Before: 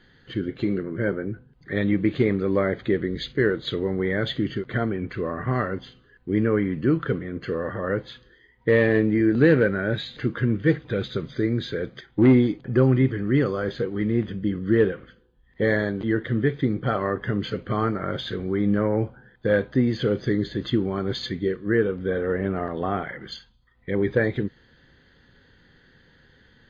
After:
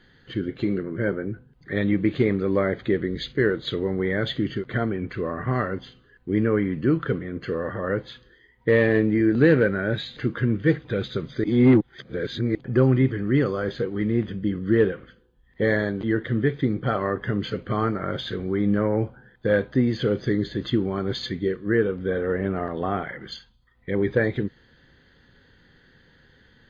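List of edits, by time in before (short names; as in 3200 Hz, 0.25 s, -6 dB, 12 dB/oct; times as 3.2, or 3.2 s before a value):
11.44–12.55 reverse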